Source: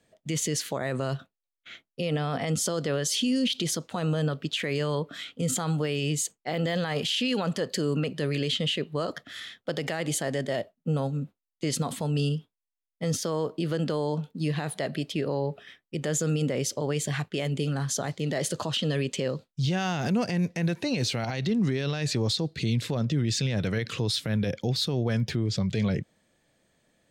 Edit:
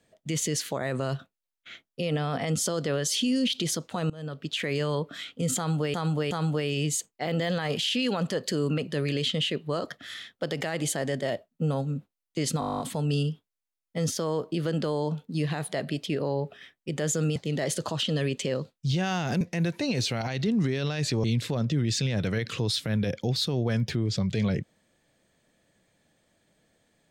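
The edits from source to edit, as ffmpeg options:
-filter_complex "[0:a]asplit=17[s0][s1][s2][s3][s4][s5][s6][s7][s8][s9][s10][s11][s12][s13][s14][s15][s16];[s0]atrim=end=4.1,asetpts=PTS-STARTPTS,afade=t=out:st=4.096:d=0.004:c=hsin:silence=0.0668344[s17];[s1]atrim=start=4.1:end=5.942,asetpts=PTS-STARTPTS,afade=t=in:d=0.51:silence=0.0668344[s18];[s2]atrim=start=5.568:end=5.942[s19];[s3]atrim=start=5.568:end=11.882[s20];[s4]atrim=start=11.858:end=11.882[s21];[s5]atrim=start=11.858:end=11.882[s22];[s6]atrim=start=11.858:end=11.882[s23];[s7]atrim=start=11.858:end=11.882[s24];[s8]atrim=start=11.858:end=11.882[s25];[s9]atrim=start=11.858:end=11.882[s26];[s10]atrim=start=11.858:end=11.882[s27];[s11]atrim=start=11.858:end=11.882[s28];[s12]atrim=start=11.858:end=11.882[s29];[s13]atrim=start=11.858:end=16.422[s30];[s14]atrim=start=18.098:end=20.152[s31];[s15]atrim=start=20.438:end=22.272[s32];[s16]atrim=start=22.638[s33];[s17][s18]concat=n=2:v=0:a=1[s34];[s34][s19]acrossfade=d=0.004:c1=hsin:c2=hsin[s35];[s35][s20]acrossfade=d=0.004:c1=hsin:c2=hsin[s36];[s36][s21]acrossfade=d=0.004:c1=hsin:c2=hsin[s37];[s37][s22]acrossfade=d=0.004:c1=hsin:c2=hsin[s38];[s38][s23]acrossfade=d=0.004:c1=hsin:c2=hsin[s39];[s39][s24]acrossfade=d=0.004:c1=hsin:c2=hsin[s40];[s40][s25]acrossfade=d=0.004:c1=hsin:c2=hsin[s41];[s41][s26]acrossfade=d=0.004:c1=hsin:c2=hsin[s42];[s42][s27]acrossfade=d=0.004:c1=hsin:c2=hsin[s43];[s43][s28]acrossfade=d=0.004:c1=hsin:c2=hsin[s44];[s44][s29]acrossfade=d=0.004:c1=hsin:c2=hsin[s45];[s45][s30]acrossfade=d=0.004:c1=hsin:c2=hsin[s46];[s46][s31]acrossfade=d=0.004:c1=hsin:c2=hsin[s47];[s47][s32]acrossfade=d=0.004:c1=hsin:c2=hsin[s48];[s48][s33]acrossfade=d=0.004:c1=hsin:c2=hsin"

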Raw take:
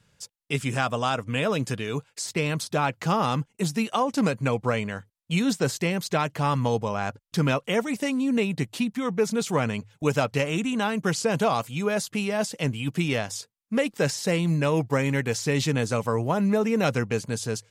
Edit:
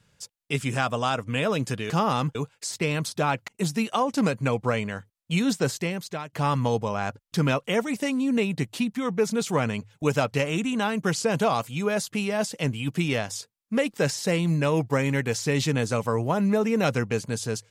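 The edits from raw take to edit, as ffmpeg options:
-filter_complex "[0:a]asplit=5[s0][s1][s2][s3][s4];[s0]atrim=end=1.902[s5];[s1]atrim=start=3.028:end=3.482[s6];[s2]atrim=start=1.898:end=3.032[s7];[s3]atrim=start=3.478:end=6.33,asetpts=PTS-STARTPTS,afade=t=out:st=2.162:d=0.69:silence=0.177828[s8];[s4]atrim=start=6.33,asetpts=PTS-STARTPTS,afade=t=in:d=0.004:c=hsin:silence=0.177828[s9];[s5][s6]acrossfade=d=0.004:c1=hsin:c2=hsin[s10];[s10][s7]acrossfade=d=0.004:c1=hsin:c2=hsin[s11];[s8][s9]concat=n=2:v=0:a=1[s12];[s11][s12]acrossfade=d=0.004:c1=hsin:c2=hsin"

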